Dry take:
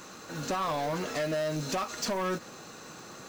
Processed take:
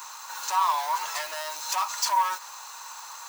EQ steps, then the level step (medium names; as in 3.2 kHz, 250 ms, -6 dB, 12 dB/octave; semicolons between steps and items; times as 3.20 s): resonant high-pass 940 Hz, resonance Q 11; tilt EQ +4.5 dB/octave; -4.0 dB